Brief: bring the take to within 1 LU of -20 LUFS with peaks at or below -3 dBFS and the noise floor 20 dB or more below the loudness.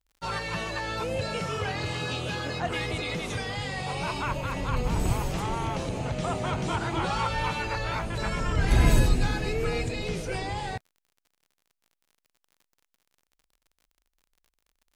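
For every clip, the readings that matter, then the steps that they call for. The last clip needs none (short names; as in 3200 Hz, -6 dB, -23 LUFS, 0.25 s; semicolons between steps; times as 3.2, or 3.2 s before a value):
ticks 47/s; loudness -29.0 LUFS; peak -9.0 dBFS; loudness target -20.0 LUFS
-> de-click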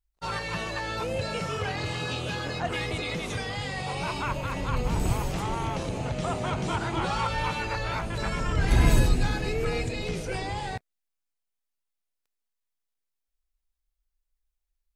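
ticks 0.13/s; loudness -29.5 LUFS; peak -9.0 dBFS; loudness target -20.0 LUFS
-> gain +9.5 dB; limiter -3 dBFS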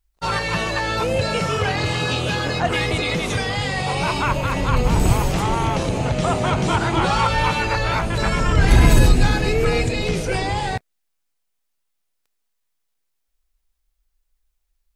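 loudness -20.0 LUFS; peak -3.0 dBFS; noise floor -73 dBFS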